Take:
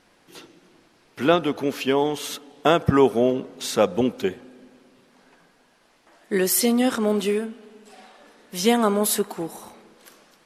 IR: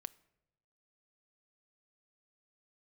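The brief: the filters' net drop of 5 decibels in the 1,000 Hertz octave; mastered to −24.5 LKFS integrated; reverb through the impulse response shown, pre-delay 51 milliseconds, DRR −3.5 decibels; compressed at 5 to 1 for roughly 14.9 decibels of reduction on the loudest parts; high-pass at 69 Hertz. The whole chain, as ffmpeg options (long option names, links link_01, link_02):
-filter_complex "[0:a]highpass=69,equalizer=frequency=1000:width_type=o:gain=-7.5,acompressor=threshold=-30dB:ratio=5,asplit=2[link_01][link_02];[1:a]atrim=start_sample=2205,adelay=51[link_03];[link_02][link_03]afir=irnorm=-1:irlink=0,volume=8dB[link_04];[link_01][link_04]amix=inputs=2:normalize=0,volume=4dB"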